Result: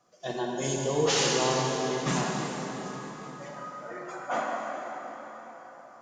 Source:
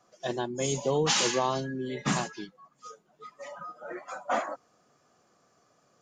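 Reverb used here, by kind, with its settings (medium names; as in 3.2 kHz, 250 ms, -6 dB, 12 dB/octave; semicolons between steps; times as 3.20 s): plate-style reverb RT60 4.8 s, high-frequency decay 0.7×, DRR -2.5 dB; trim -3 dB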